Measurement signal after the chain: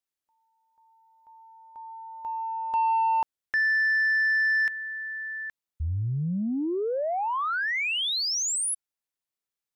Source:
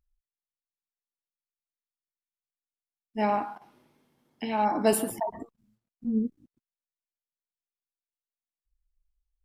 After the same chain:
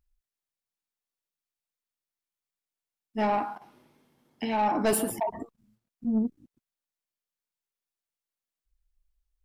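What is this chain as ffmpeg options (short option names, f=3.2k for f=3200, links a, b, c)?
-af "asoftclip=type=tanh:threshold=-21dB,volume=2.5dB"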